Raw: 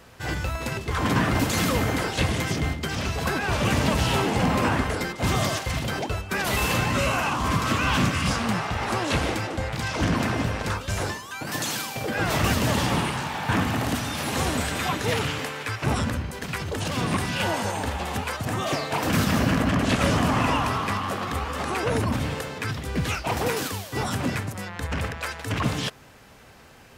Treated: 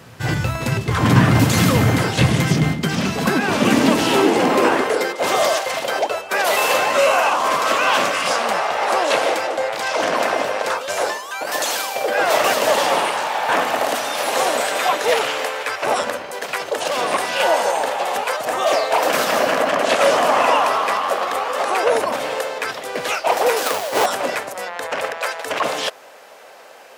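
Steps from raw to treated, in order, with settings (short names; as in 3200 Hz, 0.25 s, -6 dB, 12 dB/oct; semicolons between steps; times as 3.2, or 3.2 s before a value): 23.66–24.06 half-waves squared off; high-pass sweep 120 Hz -> 570 Hz, 2.07–5.52; gain +6 dB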